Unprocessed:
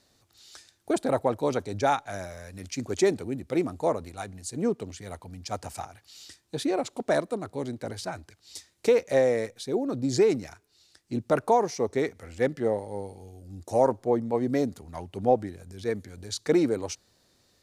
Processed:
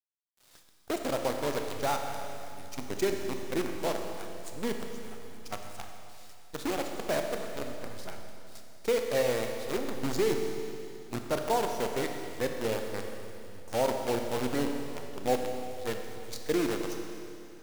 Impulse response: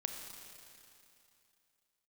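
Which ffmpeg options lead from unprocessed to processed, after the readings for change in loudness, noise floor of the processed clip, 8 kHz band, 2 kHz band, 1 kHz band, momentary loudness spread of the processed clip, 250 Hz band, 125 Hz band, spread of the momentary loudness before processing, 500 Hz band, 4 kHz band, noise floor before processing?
-5.0 dB, -54 dBFS, -1.5 dB, -1.0 dB, -4.5 dB, 15 LU, -5.5 dB, -6.0 dB, 17 LU, -5.5 dB, +0.5 dB, -66 dBFS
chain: -filter_complex "[0:a]acrusher=bits=5:dc=4:mix=0:aa=0.000001[a];[1:a]atrim=start_sample=2205[b];[a][b]afir=irnorm=-1:irlink=0,volume=-5.5dB"

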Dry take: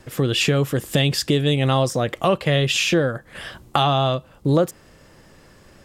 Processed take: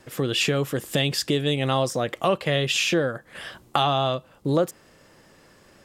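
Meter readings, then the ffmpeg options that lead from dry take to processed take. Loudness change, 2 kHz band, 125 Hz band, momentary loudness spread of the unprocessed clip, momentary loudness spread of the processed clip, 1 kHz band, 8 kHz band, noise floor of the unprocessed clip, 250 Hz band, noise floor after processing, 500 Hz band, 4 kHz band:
-3.5 dB, -2.5 dB, -7.0 dB, 7 LU, 8 LU, -2.5 dB, -2.5 dB, -51 dBFS, -4.5 dB, -55 dBFS, -3.0 dB, -2.5 dB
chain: -af "lowshelf=f=110:g=-11.5,volume=-2.5dB"

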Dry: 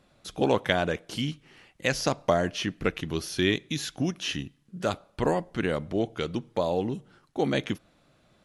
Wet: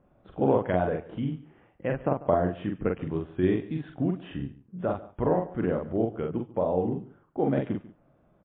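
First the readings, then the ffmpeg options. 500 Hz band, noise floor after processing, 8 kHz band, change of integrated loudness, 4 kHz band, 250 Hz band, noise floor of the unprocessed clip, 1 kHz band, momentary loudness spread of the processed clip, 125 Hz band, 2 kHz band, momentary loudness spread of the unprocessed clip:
+1.0 dB, -64 dBFS, under -40 dB, 0.0 dB, -20.5 dB, +1.5 dB, -64 dBFS, -0.5 dB, 11 LU, +1.5 dB, -9.5 dB, 9 LU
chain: -filter_complex "[0:a]lowpass=1k,asplit=2[a][b];[b]adelay=44,volume=-3.5dB[c];[a][c]amix=inputs=2:normalize=0,asplit=2[d][e];[e]aecho=0:1:143:0.119[f];[d][f]amix=inputs=2:normalize=0" -ar 8000 -c:a libmp3lame -b:a 24k

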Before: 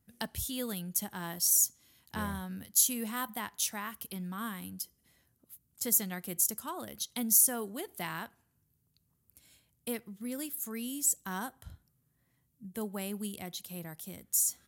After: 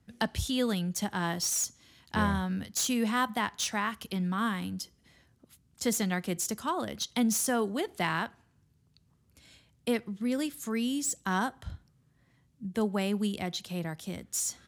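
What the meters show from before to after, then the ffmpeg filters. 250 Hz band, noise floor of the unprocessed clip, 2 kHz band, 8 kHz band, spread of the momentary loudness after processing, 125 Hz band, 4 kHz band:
+8.5 dB, -75 dBFS, +8.5 dB, -3.5 dB, 9 LU, +8.5 dB, +5.0 dB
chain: -filter_complex "[0:a]lowpass=5.5k,acrossover=split=120|1500|1900[a][b][c][d];[d]asoftclip=type=tanh:threshold=-34.5dB[e];[a][b][c][e]amix=inputs=4:normalize=0,volume=8.5dB"

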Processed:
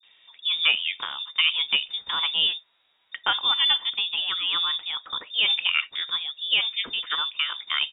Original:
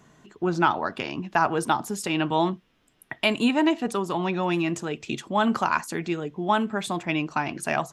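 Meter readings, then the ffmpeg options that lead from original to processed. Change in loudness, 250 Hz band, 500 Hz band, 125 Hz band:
+2.5 dB, under -25 dB, -21.5 dB, under -25 dB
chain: -filter_complex "[0:a]acrossover=split=170[a][b];[b]adelay=30[c];[a][c]amix=inputs=2:normalize=0,lowpass=f=3.2k:t=q:w=0.5098,lowpass=f=3.2k:t=q:w=0.6013,lowpass=f=3.2k:t=q:w=0.9,lowpass=f=3.2k:t=q:w=2.563,afreqshift=-3800"

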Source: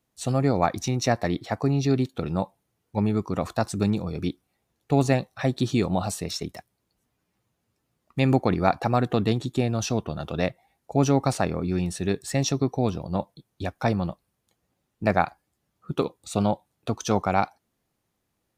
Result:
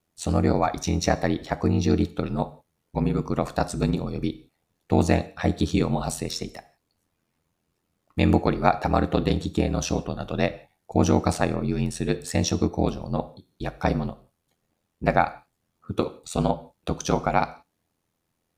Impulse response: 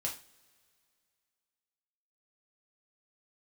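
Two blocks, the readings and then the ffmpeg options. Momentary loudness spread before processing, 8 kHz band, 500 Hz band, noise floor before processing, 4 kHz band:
10 LU, +0.5 dB, +0.5 dB, -77 dBFS, +0.5 dB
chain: -filter_complex "[0:a]aeval=exprs='val(0)*sin(2*PI*42*n/s)':c=same,asplit=2[a][b];[1:a]atrim=start_sample=2205,atrim=end_sample=4410,asetrate=23373,aresample=44100[c];[b][c]afir=irnorm=-1:irlink=0,volume=-17dB[d];[a][d]amix=inputs=2:normalize=0,volume=2dB"

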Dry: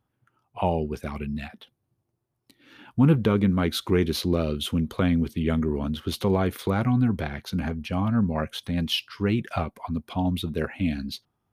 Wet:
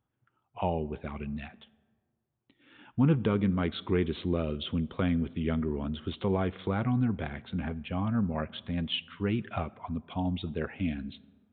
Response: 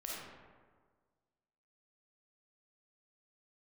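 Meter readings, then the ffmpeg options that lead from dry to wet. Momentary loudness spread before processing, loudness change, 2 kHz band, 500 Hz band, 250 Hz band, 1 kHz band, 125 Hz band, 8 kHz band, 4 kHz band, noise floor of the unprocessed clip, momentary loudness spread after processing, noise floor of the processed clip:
10 LU, -5.5 dB, -5.5 dB, -5.5 dB, -5.5 dB, -5.5 dB, -5.5 dB, under -35 dB, -7.0 dB, -78 dBFS, 10 LU, -80 dBFS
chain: -filter_complex "[0:a]aresample=8000,aresample=44100,asplit=2[a][b];[1:a]atrim=start_sample=2205[c];[b][c]afir=irnorm=-1:irlink=0,volume=-20dB[d];[a][d]amix=inputs=2:normalize=0,volume=-6dB"

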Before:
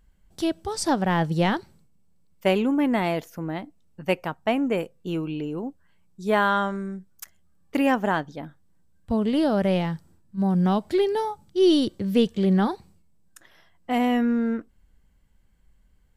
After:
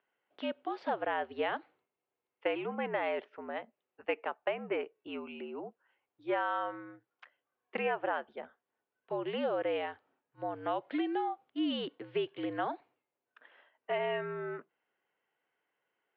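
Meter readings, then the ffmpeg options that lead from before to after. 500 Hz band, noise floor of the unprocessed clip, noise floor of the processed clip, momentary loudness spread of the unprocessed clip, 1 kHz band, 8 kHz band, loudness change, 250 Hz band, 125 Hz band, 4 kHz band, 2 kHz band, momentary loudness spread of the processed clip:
-9.5 dB, -60 dBFS, under -85 dBFS, 13 LU, -8.5 dB, n/a, -12.0 dB, -17.0 dB, -24.0 dB, -10.5 dB, -8.0 dB, 12 LU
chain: -af "highpass=f=450:t=q:w=0.5412,highpass=f=450:t=q:w=1.307,lowpass=f=3.1k:t=q:w=0.5176,lowpass=f=3.1k:t=q:w=0.7071,lowpass=f=3.1k:t=q:w=1.932,afreqshift=-69,acompressor=threshold=-25dB:ratio=6,volume=-3.5dB"

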